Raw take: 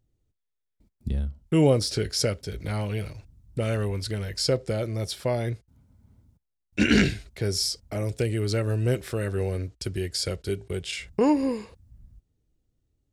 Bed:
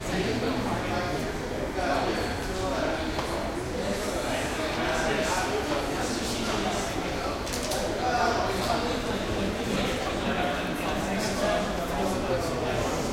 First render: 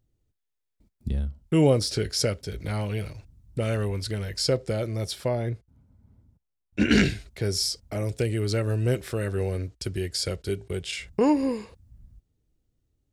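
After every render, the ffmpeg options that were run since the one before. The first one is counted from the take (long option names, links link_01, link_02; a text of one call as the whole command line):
ffmpeg -i in.wav -filter_complex "[0:a]asettb=1/sr,asplit=3[link_01][link_02][link_03];[link_01]atrim=end=5.284[link_04];[link_02]atrim=start=5.28:end=6.91,asetpts=PTS-STARTPTS,afade=type=in:duration=0.004:curve=qsin,afade=type=out:start_time=1.626:duration=0.004:curve=qsin,highshelf=frequency=2200:gain=-9[link_05];[link_03]atrim=start=6.906[link_06];[link_04][link_05]acrossfade=duration=0.004:curve1=hsin:curve2=qsin[link_07];[link_07][link_06]acrossfade=duration=0.004:curve1=qsin:curve2=hsin" out.wav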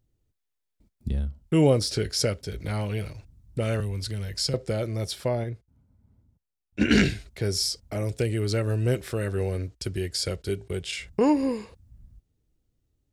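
ffmpeg -i in.wav -filter_complex "[0:a]asettb=1/sr,asplit=3[link_01][link_02][link_03];[link_01]atrim=end=3.804[link_04];[link_02]atrim=start=3.8:end=4.54,asetpts=PTS-STARTPTS,afade=type=in:duration=0.004:curve=qsin,afade=type=out:start_time=0.736:duration=0.004:curve=qsin,acrossover=split=200|3000[link_05][link_06][link_07];[link_06]acompressor=threshold=-42dB:ratio=2.5:attack=3.2:release=140:knee=2.83:detection=peak[link_08];[link_05][link_08][link_07]amix=inputs=3:normalize=0[link_09];[link_03]atrim=start=4.536[link_10];[link_04][link_09]acrossfade=duration=0.004:curve1=hsin:curve2=qsin[link_11];[link_11][link_10]acrossfade=duration=0.004:curve1=qsin:curve2=hsin,asplit=3[link_12][link_13][link_14];[link_12]atrim=end=5.442[link_15];[link_13]atrim=start=5.438:end=6.812,asetpts=PTS-STARTPTS,volume=-4dB[link_16];[link_14]atrim=start=6.808[link_17];[link_15][link_16]acrossfade=duration=0.004:curve1=hsin:curve2=hsin[link_18];[link_18][link_17]acrossfade=duration=0.004:curve1=hsin:curve2=hsin" out.wav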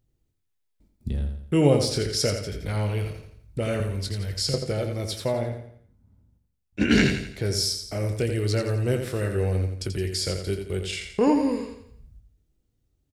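ffmpeg -i in.wav -filter_complex "[0:a]asplit=2[link_01][link_02];[link_02]adelay=21,volume=-11dB[link_03];[link_01][link_03]amix=inputs=2:normalize=0,aecho=1:1:85|170|255|340|425:0.447|0.188|0.0788|0.0331|0.0139" out.wav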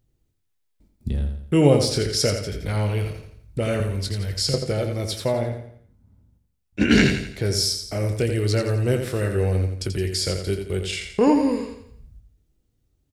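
ffmpeg -i in.wav -af "volume=3dB" out.wav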